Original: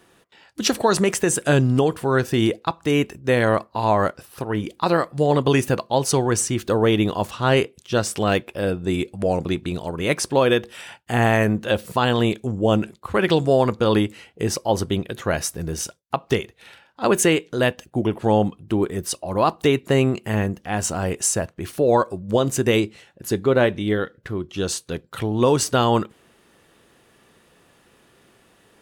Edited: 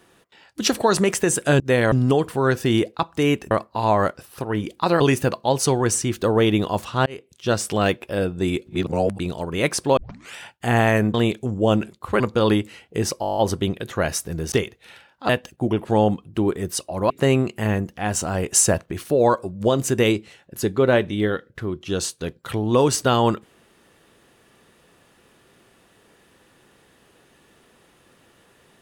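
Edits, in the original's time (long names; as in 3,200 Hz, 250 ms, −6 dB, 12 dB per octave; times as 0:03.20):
0:03.19–0:03.51: move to 0:01.60
0:05.00–0:05.46: remove
0:07.52–0:07.98: fade in
0:09.13–0:09.65: reverse
0:10.43: tape start 0.37 s
0:11.60–0:12.15: remove
0:13.21–0:13.65: remove
0:14.66: stutter 0.02 s, 9 plays
0:15.81–0:16.29: remove
0:17.06–0:17.63: remove
0:19.44–0:19.78: remove
0:21.21–0:21.60: clip gain +4.5 dB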